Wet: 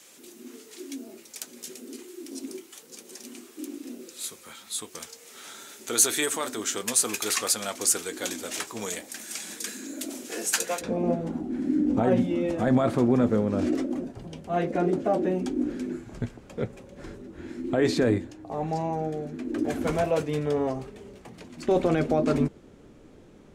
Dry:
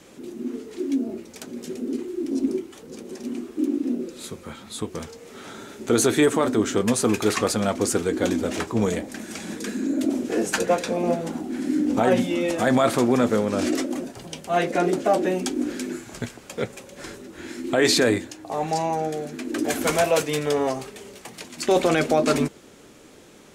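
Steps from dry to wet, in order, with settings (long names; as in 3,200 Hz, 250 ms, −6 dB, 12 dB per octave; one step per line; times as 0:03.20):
spectral tilt +4 dB per octave, from 0:10.80 −3 dB per octave
level −7 dB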